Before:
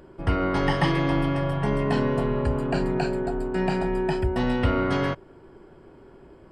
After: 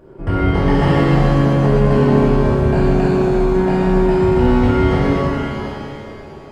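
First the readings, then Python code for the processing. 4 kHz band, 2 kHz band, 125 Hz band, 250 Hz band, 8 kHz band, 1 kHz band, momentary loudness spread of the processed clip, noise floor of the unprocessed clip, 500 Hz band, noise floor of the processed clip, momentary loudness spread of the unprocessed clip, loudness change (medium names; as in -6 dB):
+4.0 dB, +5.5 dB, +11.5 dB, +10.5 dB, no reading, +7.5 dB, 10 LU, -50 dBFS, +10.5 dB, -35 dBFS, 4 LU, +10.0 dB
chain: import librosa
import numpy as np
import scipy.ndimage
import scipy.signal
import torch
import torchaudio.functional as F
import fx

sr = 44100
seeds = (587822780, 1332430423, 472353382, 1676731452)

y = fx.tilt_shelf(x, sr, db=4.5, hz=1400.0)
y = fx.rev_shimmer(y, sr, seeds[0], rt60_s=2.7, semitones=7, shimmer_db=-8, drr_db=-7.5)
y = y * librosa.db_to_amplitude(-2.5)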